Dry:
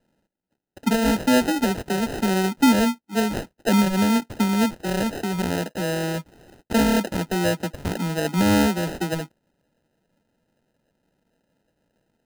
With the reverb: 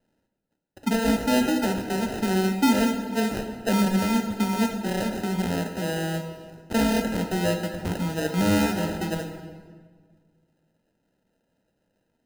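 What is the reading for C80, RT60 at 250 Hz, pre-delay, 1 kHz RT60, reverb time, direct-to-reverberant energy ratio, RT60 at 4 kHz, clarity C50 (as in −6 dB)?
8.5 dB, 2.0 s, 6 ms, 1.6 s, 1.7 s, 4.5 dB, 1.2 s, 7.0 dB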